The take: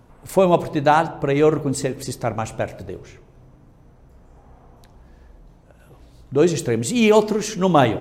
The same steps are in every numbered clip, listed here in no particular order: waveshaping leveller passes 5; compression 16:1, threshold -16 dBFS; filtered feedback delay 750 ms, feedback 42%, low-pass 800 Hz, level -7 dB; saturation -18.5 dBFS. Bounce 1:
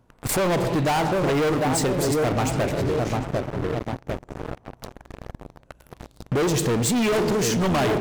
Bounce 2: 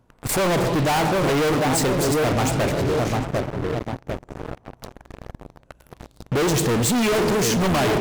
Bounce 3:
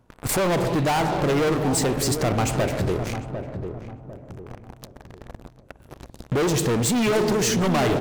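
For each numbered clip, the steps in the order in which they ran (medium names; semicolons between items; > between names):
filtered feedback delay > waveshaping leveller > compression > saturation; filtered feedback delay > waveshaping leveller > saturation > compression; waveshaping leveller > compression > saturation > filtered feedback delay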